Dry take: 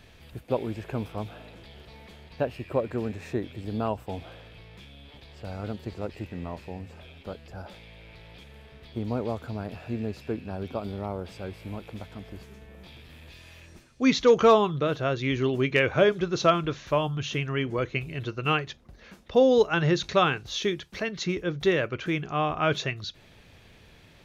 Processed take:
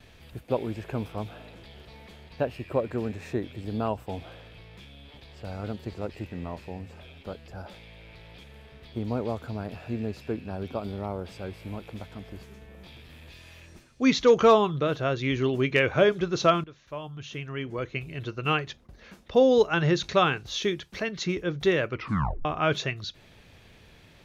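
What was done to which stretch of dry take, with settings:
0:16.64–0:18.66: fade in linear, from −19.5 dB
0:21.94: tape stop 0.51 s
whole clip: noise gate with hold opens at −49 dBFS

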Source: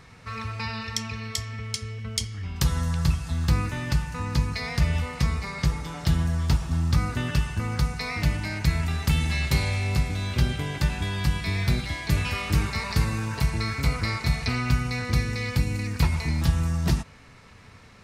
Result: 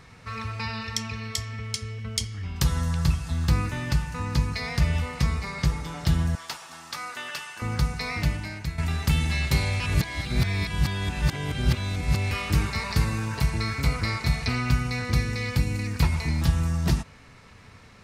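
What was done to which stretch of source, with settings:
0:06.35–0:07.62: high-pass filter 760 Hz
0:08.16–0:08.78: fade out, to −12 dB
0:09.80–0:12.31: reverse

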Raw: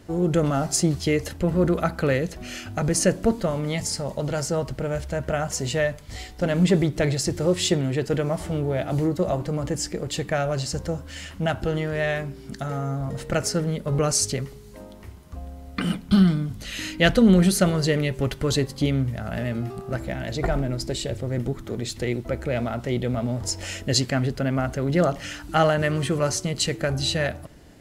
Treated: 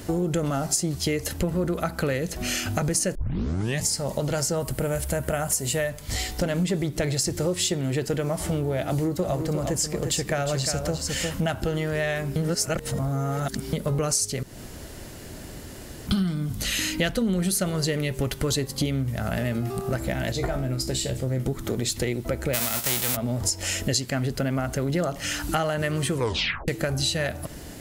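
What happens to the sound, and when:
0:03.15: tape start 0.68 s
0:04.60–0:05.90: high shelf with overshoot 7,500 Hz +7 dB, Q 1.5
0:08.83–0:11.42: single-tap delay 355 ms −8 dB
0:12.36–0:13.73: reverse
0:14.43–0:16.07: fill with room tone
0:20.32–0:21.46: tuned comb filter 65 Hz, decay 0.24 s, mix 80%
0:22.53–0:23.15: spectral envelope flattened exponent 0.3
0:26.14: tape stop 0.54 s
whole clip: high-shelf EQ 6,800 Hz +12 dB; downward compressor 5 to 1, threshold −33 dBFS; level +9 dB

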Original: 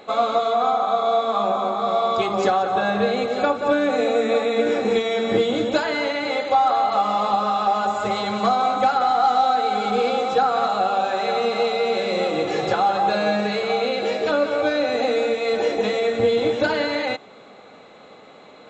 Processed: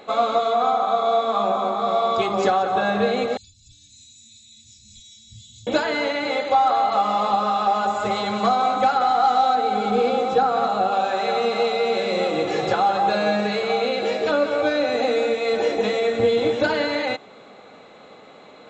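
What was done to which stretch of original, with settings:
0:03.37–0:05.67: inverse Chebyshev band-stop filter 400–1,300 Hz, stop band 80 dB
0:09.55–0:10.92: tilt shelving filter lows +3.5 dB, about 710 Hz

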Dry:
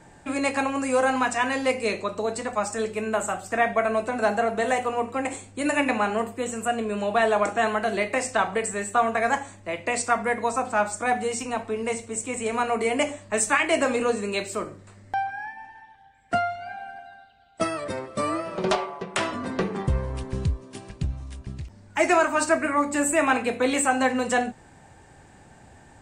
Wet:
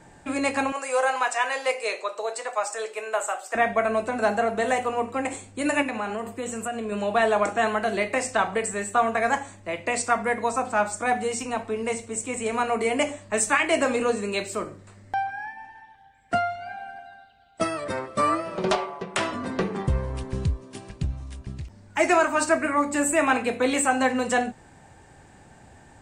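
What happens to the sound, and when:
0:00.72–0:03.55: high-pass filter 470 Hz 24 dB per octave
0:05.82–0:06.92: downward compressor 3 to 1, threshold −27 dBFS
0:17.86–0:18.35: dynamic equaliser 1,300 Hz, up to +7 dB, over −41 dBFS, Q 1

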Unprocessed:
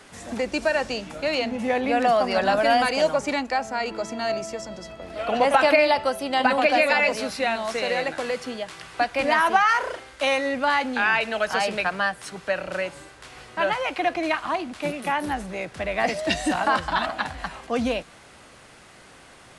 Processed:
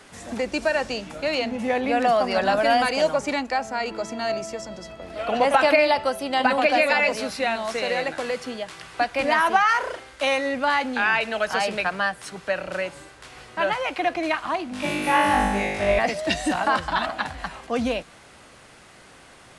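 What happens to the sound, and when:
0:14.70–0:15.99: flutter between parallel walls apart 3.4 metres, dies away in 1.2 s

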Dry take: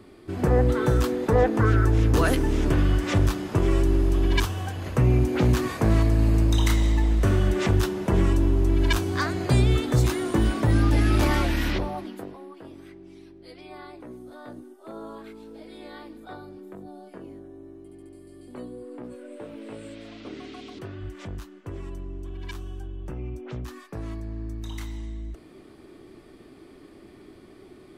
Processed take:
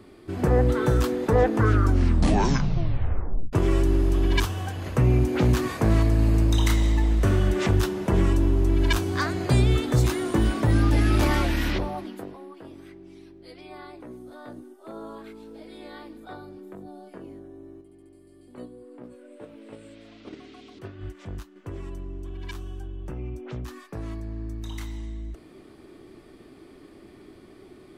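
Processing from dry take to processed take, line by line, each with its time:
0:01.65: tape stop 1.88 s
0:17.81–0:21.56: noise gate −38 dBFS, range −6 dB

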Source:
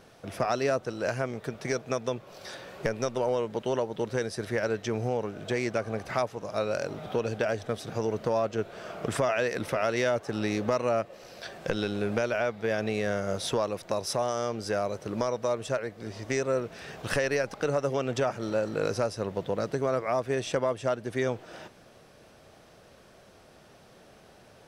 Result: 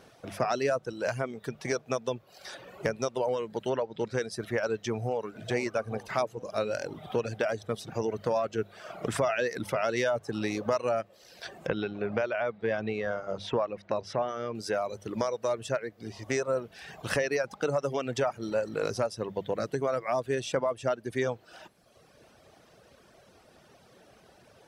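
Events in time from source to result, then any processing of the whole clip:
0:03.69–0:04.30: low-pass filter 3,800 Hz → 9,300 Hz
0:04.91–0:05.35: delay throw 430 ms, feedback 75%, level −10.5 dB
0:11.67–0:14.55: low-pass filter 3,000 Hz
whole clip: high-pass filter 40 Hz; reverb reduction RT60 1.1 s; mains-hum notches 50/100/150/200 Hz

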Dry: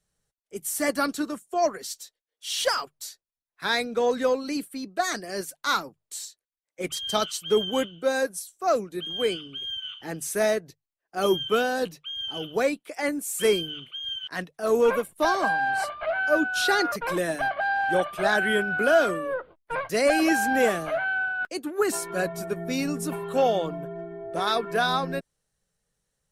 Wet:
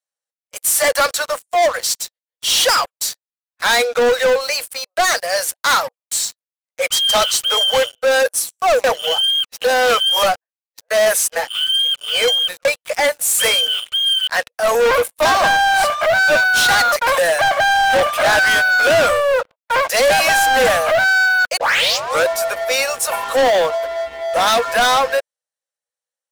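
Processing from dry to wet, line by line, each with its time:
0:08.84–0:12.65: reverse
0:21.57: tape start 0.71 s
whole clip: Chebyshev high-pass filter 480 Hz, order 8; leveller curve on the samples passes 5

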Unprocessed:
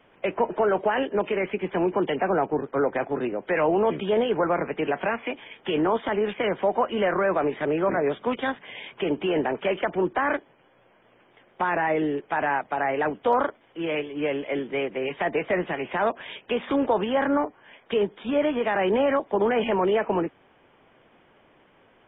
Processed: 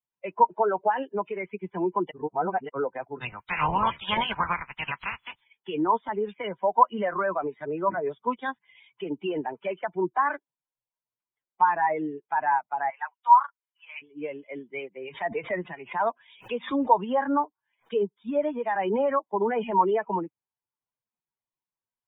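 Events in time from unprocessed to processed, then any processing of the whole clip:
0:02.11–0:02.69: reverse
0:03.20–0:05.40: ceiling on every frequency bin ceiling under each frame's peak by 25 dB
0:12.90–0:14.02: high-pass filter 850 Hz 24 dB per octave
0:14.99–0:17.93: background raised ahead of every attack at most 110 dB per second
whole clip: spectral dynamics exaggerated over time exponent 2; parametric band 970 Hz +14.5 dB 0.34 octaves

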